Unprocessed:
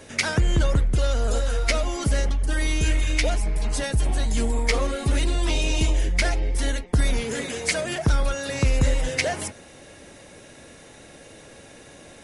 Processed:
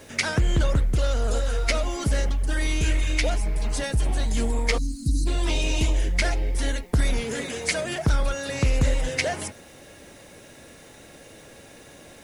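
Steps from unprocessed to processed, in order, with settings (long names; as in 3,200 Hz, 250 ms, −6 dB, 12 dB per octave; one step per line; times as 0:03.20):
time-frequency box erased 0:04.78–0:05.27, 340–3,900 Hz
bit-depth reduction 10 bits, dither triangular
highs frequency-modulated by the lows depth 0.17 ms
level −1 dB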